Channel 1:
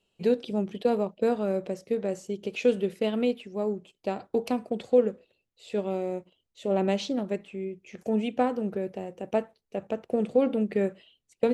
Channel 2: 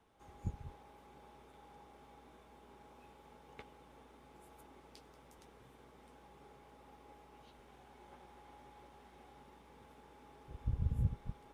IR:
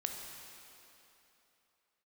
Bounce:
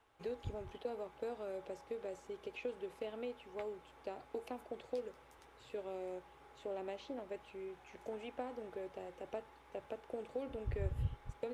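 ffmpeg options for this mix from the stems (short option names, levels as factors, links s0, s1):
-filter_complex "[0:a]acrossover=split=380|2700[s0][s1][s2];[s0]acompressor=threshold=0.0178:ratio=4[s3];[s1]acompressor=threshold=0.0224:ratio=4[s4];[s2]acompressor=threshold=0.00158:ratio=4[s5];[s3][s4][s5]amix=inputs=3:normalize=0,volume=0.335[s6];[1:a]equalizer=f=1600:t=o:w=1.8:g=6.5,volume=0.708[s7];[s6][s7]amix=inputs=2:normalize=0,equalizer=f=200:w=3.3:g=-14.5"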